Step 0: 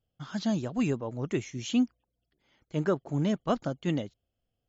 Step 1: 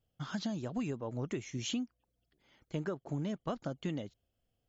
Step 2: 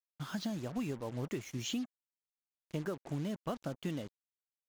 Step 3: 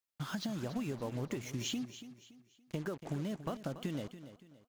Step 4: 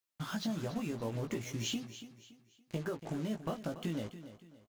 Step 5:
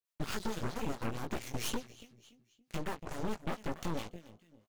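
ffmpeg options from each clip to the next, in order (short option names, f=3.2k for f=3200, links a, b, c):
-af "acompressor=threshold=-34dB:ratio=10,volume=1dB"
-af "acrusher=bits=7:mix=0:aa=0.5,volume=-1dB"
-af "acompressor=threshold=-37dB:ratio=6,aecho=1:1:284|568|852|1136:0.224|0.0806|0.029|0.0104,volume=3dB"
-filter_complex "[0:a]asplit=2[a][b];[b]adelay=18,volume=-4.5dB[c];[a][c]amix=inputs=2:normalize=0"
-filter_complex "[0:a]acrossover=split=650[a][b];[a]aeval=exprs='val(0)*(1-0.7/2+0.7/2*cos(2*PI*4.6*n/s))':c=same[c];[b]aeval=exprs='val(0)*(1-0.7/2-0.7/2*cos(2*PI*4.6*n/s))':c=same[d];[c][d]amix=inputs=2:normalize=0,aeval=exprs='0.0501*(cos(1*acos(clip(val(0)/0.0501,-1,1)))-cos(1*PI/2))+0.02*(cos(8*acos(clip(val(0)/0.0501,-1,1)))-cos(8*PI/2))':c=same,volume=-1.5dB"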